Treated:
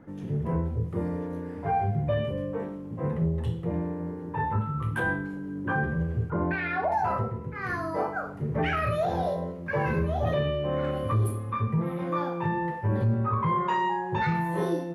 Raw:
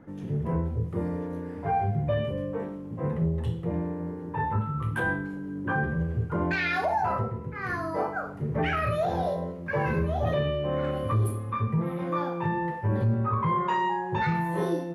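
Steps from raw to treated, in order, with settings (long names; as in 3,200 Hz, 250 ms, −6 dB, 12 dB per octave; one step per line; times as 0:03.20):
0:06.30–0:06.92: low-pass filter 1,800 Hz 12 dB per octave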